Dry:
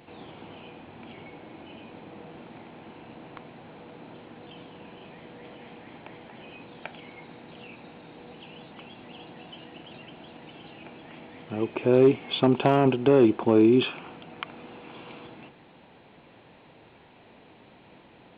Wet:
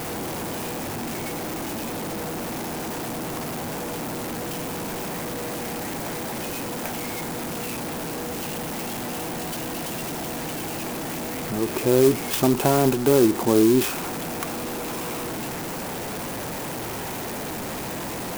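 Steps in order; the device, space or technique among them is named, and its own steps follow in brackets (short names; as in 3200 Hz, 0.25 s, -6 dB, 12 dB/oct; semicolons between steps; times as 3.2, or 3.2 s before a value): early CD player with a faulty converter (zero-crossing step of -25.5 dBFS; clock jitter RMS 0.076 ms)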